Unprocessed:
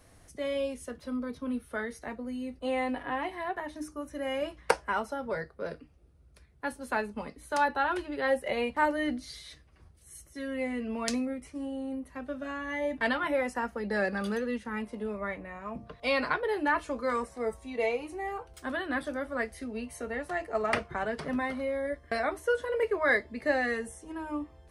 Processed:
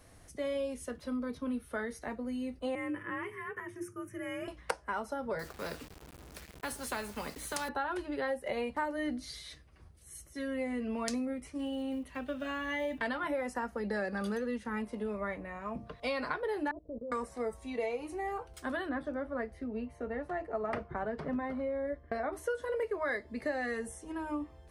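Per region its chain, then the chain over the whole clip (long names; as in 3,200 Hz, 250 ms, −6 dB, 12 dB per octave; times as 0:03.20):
0:02.75–0:04.48: phaser with its sweep stopped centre 1,700 Hz, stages 4 + frequency shifter +45 Hz
0:05.39–0:07.69: bit-depth reduction 10 bits, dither none + every bin compressed towards the loudest bin 2 to 1
0:11.59–0:13.02: one scale factor per block 7 bits + parametric band 3,000 Hz +10.5 dB 0.88 octaves
0:16.71–0:17.12: mu-law and A-law mismatch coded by mu + Chebyshev low-pass filter 580 Hz, order 4 + output level in coarse steps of 20 dB
0:18.89–0:22.33: low-pass filter 1,100 Hz 6 dB per octave + one half of a high-frequency compander decoder only
whole clip: dynamic equaliser 2,700 Hz, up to −4 dB, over −47 dBFS, Q 1.2; downward compressor 5 to 1, threshold −31 dBFS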